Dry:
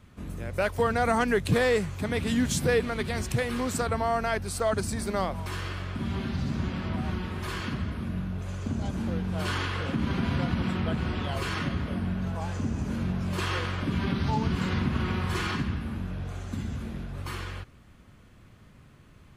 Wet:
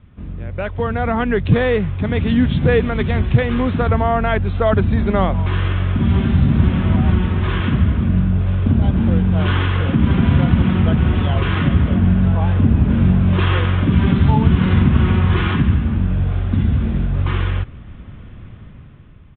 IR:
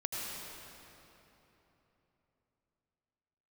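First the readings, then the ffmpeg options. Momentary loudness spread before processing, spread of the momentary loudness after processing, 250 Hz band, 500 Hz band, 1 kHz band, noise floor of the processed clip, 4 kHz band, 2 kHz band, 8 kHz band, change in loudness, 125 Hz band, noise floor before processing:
10 LU, 5 LU, +13.0 dB, +8.0 dB, +7.5 dB, -38 dBFS, +6.0 dB, +7.0 dB, under -40 dB, +12.5 dB, +16.0 dB, -54 dBFS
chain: -af "lowshelf=f=220:g=10,dynaudnorm=f=310:g=7:m=11.5dB,aresample=8000,aresample=44100"

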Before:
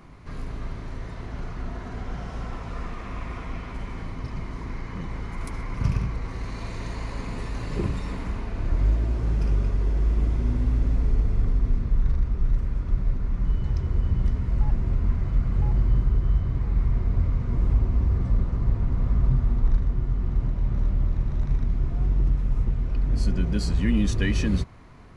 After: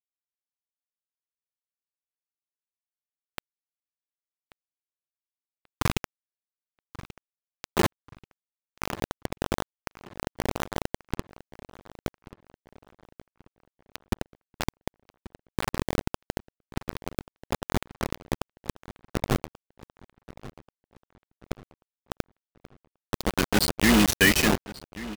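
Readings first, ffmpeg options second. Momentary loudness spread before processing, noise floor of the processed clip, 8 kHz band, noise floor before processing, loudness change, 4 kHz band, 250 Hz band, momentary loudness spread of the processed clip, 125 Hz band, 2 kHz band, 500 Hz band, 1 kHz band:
12 LU, under -85 dBFS, n/a, -36 dBFS, -1.5 dB, +11.0 dB, +0.5 dB, 24 LU, -12.0 dB, +9.5 dB, +4.5 dB, +5.0 dB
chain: -filter_complex "[0:a]afftfilt=real='re*gte(hypot(re,im),0.0282)':imag='im*gte(hypot(re,im),0.0282)':win_size=1024:overlap=0.75,highpass=f=650:p=1,dynaudnorm=f=200:g=7:m=9.5dB,acrusher=bits=3:mix=0:aa=0.000001,asplit=2[a][b];[b]adelay=1135,lowpass=f=5k:p=1,volume=-17dB,asplit=2[c][d];[d]adelay=1135,lowpass=f=5k:p=1,volume=0.42,asplit=2[e][f];[f]adelay=1135,lowpass=f=5k:p=1,volume=0.42,asplit=2[g][h];[h]adelay=1135,lowpass=f=5k:p=1,volume=0.42[i];[c][e][g][i]amix=inputs=4:normalize=0[j];[a][j]amix=inputs=2:normalize=0,volume=3dB"

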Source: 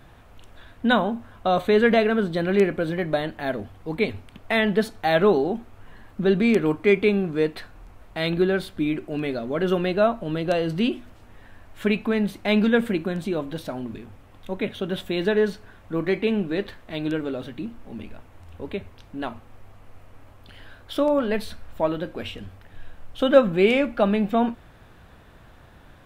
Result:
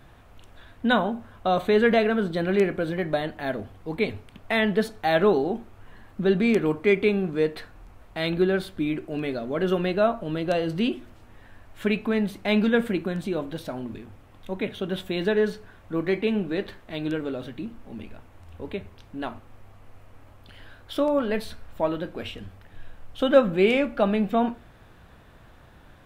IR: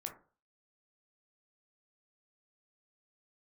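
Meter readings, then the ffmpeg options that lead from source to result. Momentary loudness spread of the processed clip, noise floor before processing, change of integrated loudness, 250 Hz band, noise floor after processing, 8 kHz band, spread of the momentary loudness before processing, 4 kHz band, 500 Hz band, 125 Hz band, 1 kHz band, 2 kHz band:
16 LU, -50 dBFS, -1.5 dB, -2.0 dB, -51 dBFS, n/a, 16 LU, -2.0 dB, -1.5 dB, -2.0 dB, -1.5 dB, -1.5 dB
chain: -filter_complex "[0:a]asplit=2[a][b];[1:a]atrim=start_sample=2205[c];[b][c]afir=irnorm=-1:irlink=0,volume=-6.5dB[d];[a][d]amix=inputs=2:normalize=0,volume=-4dB"

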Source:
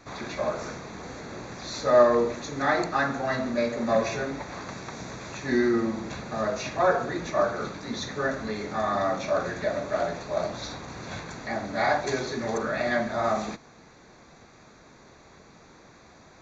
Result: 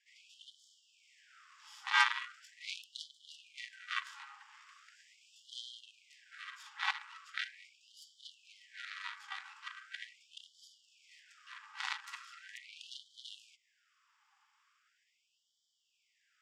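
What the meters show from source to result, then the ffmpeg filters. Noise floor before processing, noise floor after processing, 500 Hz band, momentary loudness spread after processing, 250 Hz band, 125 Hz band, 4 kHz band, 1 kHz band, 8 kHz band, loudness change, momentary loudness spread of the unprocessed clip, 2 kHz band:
-53 dBFS, -79 dBFS, under -40 dB, 21 LU, under -40 dB, under -40 dB, -3.5 dB, -15.0 dB, n/a, -12.5 dB, 14 LU, -7.5 dB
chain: -af "aeval=exprs='val(0)*sin(2*PI*970*n/s)':c=same,aeval=exprs='0.473*(cos(1*acos(clip(val(0)/0.473,-1,1)))-cos(1*PI/2))+0.0944*(cos(3*acos(clip(val(0)/0.473,-1,1)))-cos(3*PI/2))+0.0841*(cos(4*acos(clip(val(0)/0.473,-1,1)))-cos(4*PI/2))+0.00841*(cos(5*acos(clip(val(0)/0.473,-1,1)))-cos(5*PI/2))+0.0473*(cos(7*acos(clip(val(0)/0.473,-1,1)))-cos(7*PI/2))':c=same,afftfilt=real='re*gte(b*sr/1024,770*pow(3000/770,0.5+0.5*sin(2*PI*0.4*pts/sr)))':imag='im*gte(b*sr/1024,770*pow(3000/770,0.5+0.5*sin(2*PI*0.4*pts/sr)))':win_size=1024:overlap=0.75,volume=-2.5dB"

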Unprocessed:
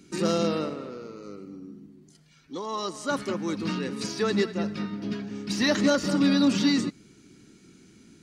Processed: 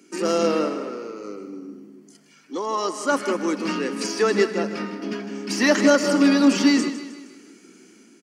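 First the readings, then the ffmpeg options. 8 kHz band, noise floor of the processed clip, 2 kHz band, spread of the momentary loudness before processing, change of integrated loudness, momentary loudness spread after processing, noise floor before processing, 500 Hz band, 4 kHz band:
+6.5 dB, -53 dBFS, +7.0 dB, 19 LU, +5.0 dB, 18 LU, -57 dBFS, +7.0 dB, +2.5 dB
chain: -af "highpass=f=250:w=0.5412,highpass=f=250:w=1.3066,dynaudnorm=f=100:g=7:m=4.5dB,equalizer=f=3.8k:t=o:w=0.21:g=-14,aecho=1:1:156|312|468|624|780:0.237|0.111|0.0524|0.0246|0.0116,volume=2.5dB"

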